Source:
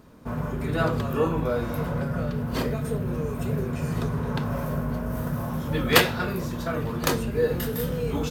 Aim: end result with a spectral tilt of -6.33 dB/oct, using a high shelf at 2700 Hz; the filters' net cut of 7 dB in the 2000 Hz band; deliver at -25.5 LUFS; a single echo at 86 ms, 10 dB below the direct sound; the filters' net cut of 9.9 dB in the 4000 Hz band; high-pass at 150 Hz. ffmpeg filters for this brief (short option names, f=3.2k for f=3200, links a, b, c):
-af "highpass=150,equalizer=f=2k:t=o:g=-5,highshelf=f=2.7k:g=-8,equalizer=f=4k:t=o:g=-4.5,aecho=1:1:86:0.316,volume=3.5dB"